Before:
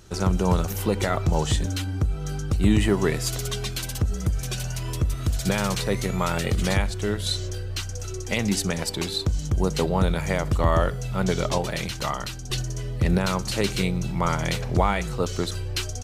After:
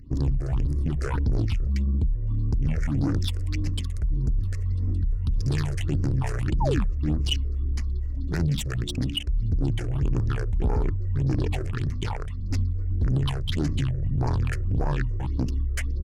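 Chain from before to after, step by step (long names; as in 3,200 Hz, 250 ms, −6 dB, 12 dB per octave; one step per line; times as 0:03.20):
adaptive Wiener filter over 41 samples
parametric band 810 Hz −9 dB 0.96 octaves
in parallel at −1 dB: compressor whose output falls as the input rises −26 dBFS, ratio −0.5
on the sum: soft clipping −18.5 dBFS, distortion −13 dB
sound drawn into the spectrogram fall, 0:06.60–0:06.84, 220–1,400 Hz −26 dBFS
all-pass phaser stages 6, 1.7 Hz, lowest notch 310–4,600 Hz
pitch shifter −5.5 semitones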